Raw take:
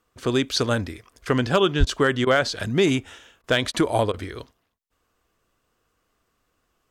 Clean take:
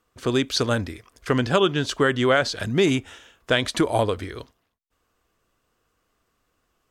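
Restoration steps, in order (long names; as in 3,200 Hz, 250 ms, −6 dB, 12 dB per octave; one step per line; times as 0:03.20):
clipped peaks rebuilt −8.5 dBFS
0:01.79–0:01.91: high-pass filter 140 Hz 24 dB per octave
repair the gap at 0:01.85/0:02.25/0:03.42/0:03.72/0:04.12, 16 ms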